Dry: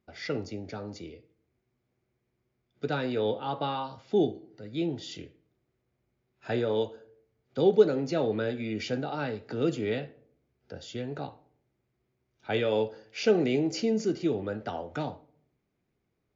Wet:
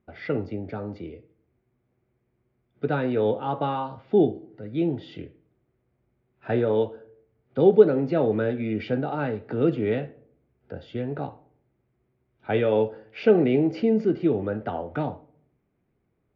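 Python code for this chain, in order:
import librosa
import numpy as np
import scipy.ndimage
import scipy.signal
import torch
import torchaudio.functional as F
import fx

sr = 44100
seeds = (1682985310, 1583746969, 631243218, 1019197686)

y = fx.air_absorb(x, sr, metres=480.0)
y = F.gain(torch.from_numpy(y), 6.5).numpy()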